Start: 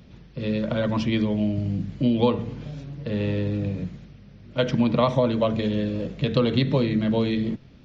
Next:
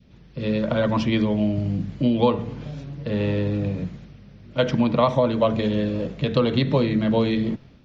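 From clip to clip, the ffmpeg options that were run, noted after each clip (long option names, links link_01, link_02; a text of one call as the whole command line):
ffmpeg -i in.wav -af "dynaudnorm=framelen=100:gausssize=5:maxgain=6dB,adynamicequalizer=threshold=0.0282:dfrequency=910:dqfactor=0.83:tfrequency=910:tqfactor=0.83:attack=5:release=100:ratio=0.375:range=2:mode=boostabove:tftype=bell,volume=-4.5dB" out.wav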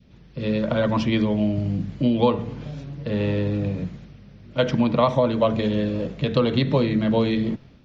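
ffmpeg -i in.wav -af anull out.wav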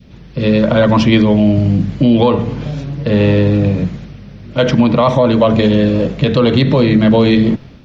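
ffmpeg -i in.wav -filter_complex "[0:a]asplit=2[link_01][link_02];[link_02]asoftclip=type=tanh:threshold=-13dB,volume=-11dB[link_03];[link_01][link_03]amix=inputs=2:normalize=0,alimiter=level_in=11dB:limit=-1dB:release=50:level=0:latency=1,volume=-1dB" out.wav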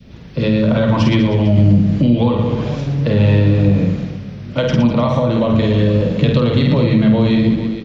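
ffmpeg -i in.wav -filter_complex "[0:a]asplit=2[link_01][link_02];[link_02]aecho=0:1:50|115|199.5|309.4|452.2:0.631|0.398|0.251|0.158|0.1[link_03];[link_01][link_03]amix=inputs=2:normalize=0,acrossover=split=170[link_04][link_05];[link_05]acompressor=threshold=-16dB:ratio=4[link_06];[link_04][link_06]amix=inputs=2:normalize=0" out.wav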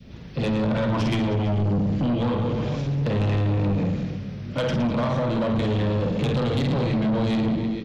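ffmpeg -i in.wav -af "asoftclip=type=tanh:threshold=-16dB,volume=-3.5dB" out.wav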